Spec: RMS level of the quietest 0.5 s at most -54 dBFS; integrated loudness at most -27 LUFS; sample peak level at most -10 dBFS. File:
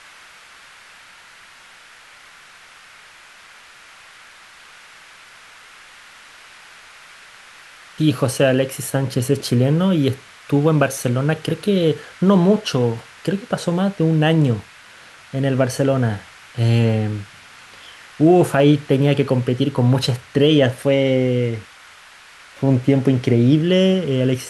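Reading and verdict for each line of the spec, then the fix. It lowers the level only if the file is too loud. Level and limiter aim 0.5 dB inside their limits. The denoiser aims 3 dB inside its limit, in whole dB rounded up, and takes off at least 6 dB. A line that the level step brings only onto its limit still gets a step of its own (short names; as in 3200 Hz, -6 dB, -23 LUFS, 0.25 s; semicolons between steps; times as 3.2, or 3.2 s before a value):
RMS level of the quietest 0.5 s -45 dBFS: fail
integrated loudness -18.0 LUFS: fail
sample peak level -3.5 dBFS: fail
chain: gain -9.5 dB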